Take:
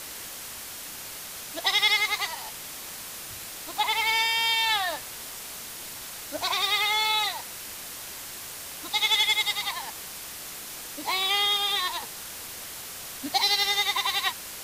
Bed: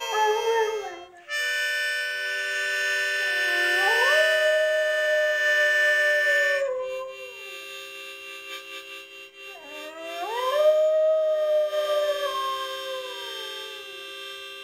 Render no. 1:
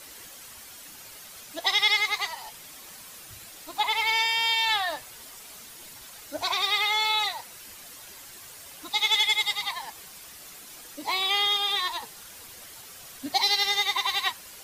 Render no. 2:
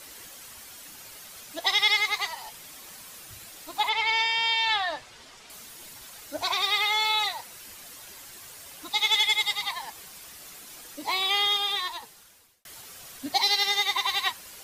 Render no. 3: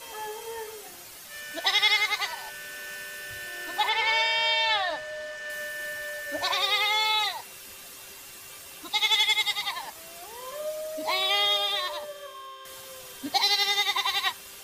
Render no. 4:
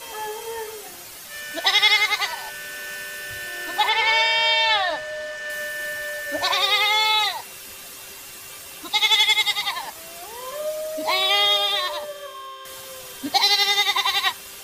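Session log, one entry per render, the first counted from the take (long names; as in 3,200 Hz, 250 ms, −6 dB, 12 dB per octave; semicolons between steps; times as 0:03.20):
broadband denoise 9 dB, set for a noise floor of −40 dBFS
0:03.89–0:05.50: low-pass filter 5,400 Hz; 0:11.54–0:12.65: fade out; 0:13.36–0:13.91: Butterworth high-pass 150 Hz
mix in bed −14.5 dB
level +5.5 dB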